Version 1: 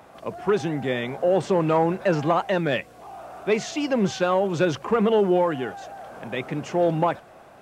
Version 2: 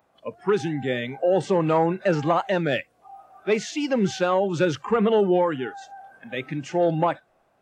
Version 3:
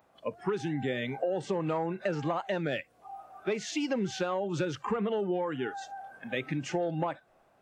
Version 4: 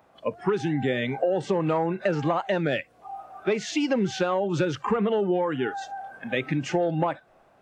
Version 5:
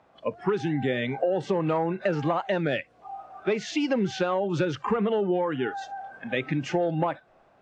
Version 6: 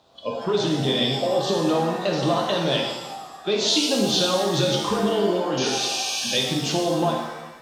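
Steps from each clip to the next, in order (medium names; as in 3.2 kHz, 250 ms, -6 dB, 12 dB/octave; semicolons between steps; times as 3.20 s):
spectral noise reduction 17 dB
compression, threshold -28 dBFS, peak gain reduction 12 dB
treble shelf 7 kHz -7 dB; trim +6.5 dB
low-pass 6.2 kHz 12 dB/octave; trim -1 dB
resonant high shelf 2.8 kHz +10 dB, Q 3; painted sound noise, 5.57–6.37 s, 2.3–6.7 kHz -31 dBFS; pitch-shifted reverb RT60 1.1 s, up +7 st, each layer -8 dB, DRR -1 dB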